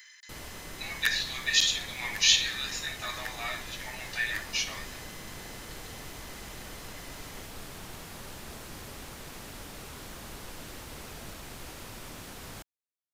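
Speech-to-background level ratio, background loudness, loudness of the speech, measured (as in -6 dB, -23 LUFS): 15.0 dB, -43.0 LUFS, -28.0 LUFS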